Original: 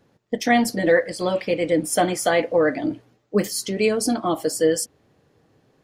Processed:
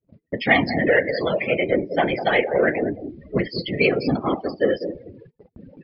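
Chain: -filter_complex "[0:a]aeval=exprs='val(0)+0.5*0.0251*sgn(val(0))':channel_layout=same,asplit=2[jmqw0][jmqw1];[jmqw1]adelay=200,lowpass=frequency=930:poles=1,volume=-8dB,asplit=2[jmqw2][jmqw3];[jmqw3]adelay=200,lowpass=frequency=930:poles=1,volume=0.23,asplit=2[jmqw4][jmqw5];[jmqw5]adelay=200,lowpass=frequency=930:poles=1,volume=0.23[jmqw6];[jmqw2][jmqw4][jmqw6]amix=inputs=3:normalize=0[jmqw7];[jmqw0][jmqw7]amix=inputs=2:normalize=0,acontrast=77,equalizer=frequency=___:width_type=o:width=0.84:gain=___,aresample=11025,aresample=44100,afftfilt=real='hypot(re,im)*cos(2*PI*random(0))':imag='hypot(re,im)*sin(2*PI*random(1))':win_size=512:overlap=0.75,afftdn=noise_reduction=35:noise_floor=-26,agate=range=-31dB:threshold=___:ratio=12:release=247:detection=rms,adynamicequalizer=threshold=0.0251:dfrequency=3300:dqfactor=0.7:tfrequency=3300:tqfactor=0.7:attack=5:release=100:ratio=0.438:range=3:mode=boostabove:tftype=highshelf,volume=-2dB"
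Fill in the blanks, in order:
2.2k, 8, -40dB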